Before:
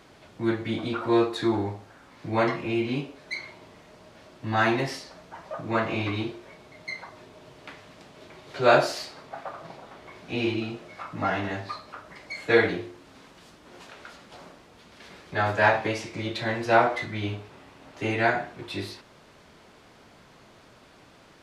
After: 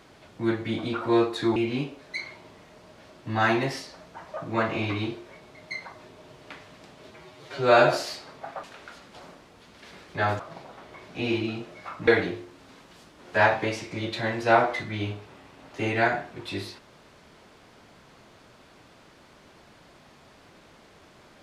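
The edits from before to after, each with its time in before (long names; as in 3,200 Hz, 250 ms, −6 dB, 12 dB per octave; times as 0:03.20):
0:01.56–0:02.73: remove
0:08.27–0:08.82: time-stretch 1.5×
0:11.21–0:12.54: remove
0:13.81–0:15.57: move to 0:09.53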